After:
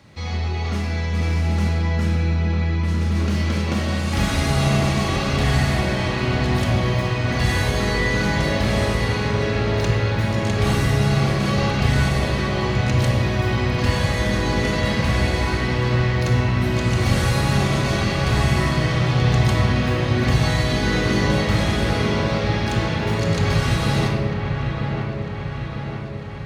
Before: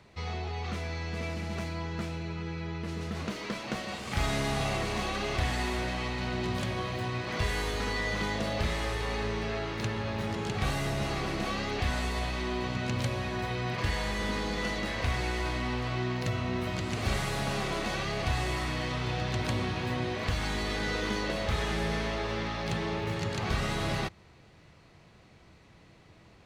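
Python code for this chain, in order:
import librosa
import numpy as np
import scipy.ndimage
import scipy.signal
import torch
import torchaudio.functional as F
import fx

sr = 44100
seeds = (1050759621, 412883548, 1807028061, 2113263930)

p1 = fx.highpass(x, sr, hz=150.0, slope=6)
p2 = fx.bass_treble(p1, sr, bass_db=9, treble_db=4)
p3 = fx.notch(p2, sr, hz=7600.0, q=29.0)
p4 = p3 + fx.echo_wet_lowpass(p3, sr, ms=949, feedback_pct=62, hz=2500.0, wet_db=-5.5, dry=0)
p5 = fx.room_shoebox(p4, sr, seeds[0], volume_m3=1900.0, walls='mixed', distance_m=2.3)
y = p5 * librosa.db_to_amplitude(3.5)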